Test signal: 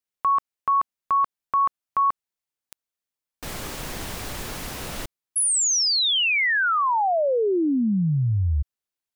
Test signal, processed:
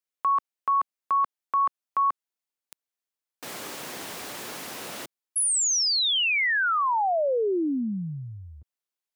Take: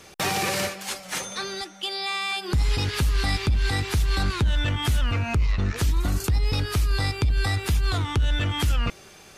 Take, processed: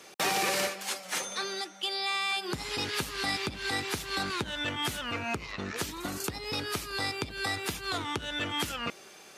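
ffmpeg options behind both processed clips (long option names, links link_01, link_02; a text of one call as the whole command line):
ffmpeg -i in.wav -af "highpass=250,volume=-2.5dB" out.wav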